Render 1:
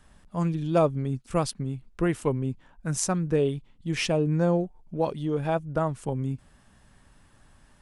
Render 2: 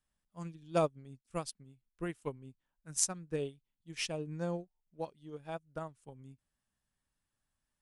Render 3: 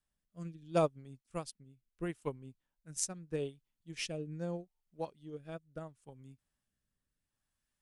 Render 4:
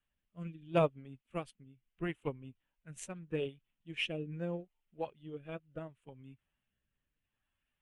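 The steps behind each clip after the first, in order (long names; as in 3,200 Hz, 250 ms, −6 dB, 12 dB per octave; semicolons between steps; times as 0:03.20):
high-shelf EQ 2,500 Hz +9.5 dB; expander for the loud parts 2.5 to 1, over −33 dBFS; level −7.5 dB
rotating-speaker cabinet horn 0.75 Hz; level +1 dB
spectral magnitudes quantised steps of 15 dB; high shelf with overshoot 3,800 Hz −10 dB, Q 3; level +1 dB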